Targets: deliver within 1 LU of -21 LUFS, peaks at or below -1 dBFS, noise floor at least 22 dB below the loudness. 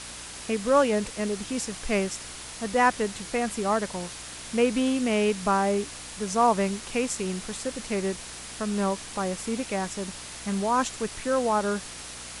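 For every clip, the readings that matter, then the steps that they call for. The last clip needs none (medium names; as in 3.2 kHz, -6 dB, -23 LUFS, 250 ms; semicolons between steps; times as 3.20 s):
hum 60 Hz; highest harmonic 300 Hz; hum level -51 dBFS; noise floor -41 dBFS; noise floor target -49 dBFS; loudness -27.0 LUFS; peak level -8.0 dBFS; loudness target -21.0 LUFS
-> de-hum 60 Hz, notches 5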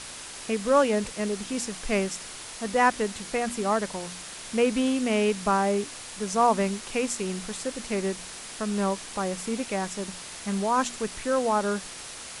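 hum not found; noise floor -41 dBFS; noise floor target -50 dBFS
-> noise reduction 9 dB, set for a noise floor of -41 dBFS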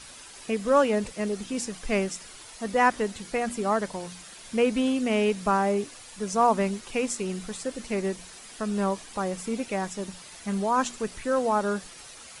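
noise floor -46 dBFS; noise floor target -50 dBFS
-> noise reduction 6 dB, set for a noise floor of -46 dBFS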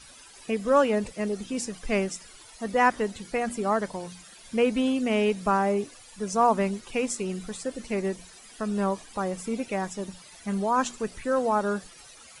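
noise floor -50 dBFS; loudness -27.5 LUFS; peak level -8.0 dBFS; loudness target -21.0 LUFS
-> trim +6.5 dB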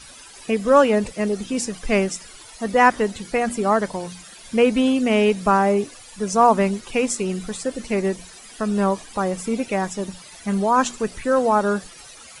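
loudness -21.0 LUFS; peak level -1.5 dBFS; noise floor -43 dBFS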